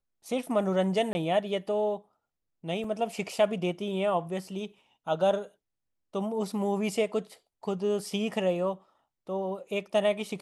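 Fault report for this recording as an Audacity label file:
1.130000	1.150000	dropout 20 ms
2.840000	2.840000	dropout 2.6 ms

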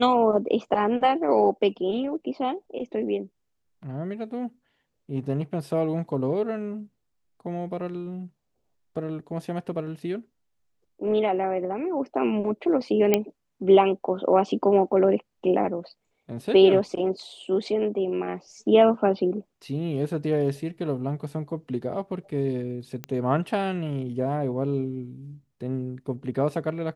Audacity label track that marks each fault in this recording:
13.140000	13.140000	pop -6 dBFS
23.040000	23.040000	pop -17 dBFS

